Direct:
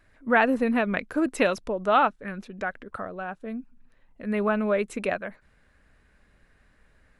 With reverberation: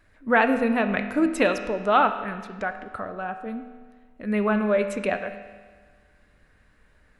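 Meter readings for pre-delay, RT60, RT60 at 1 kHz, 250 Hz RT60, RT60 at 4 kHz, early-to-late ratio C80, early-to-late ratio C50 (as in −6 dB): 4 ms, 1.5 s, 1.5 s, 1.5 s, 1.4 s, 10.0 dB, 9.0 dB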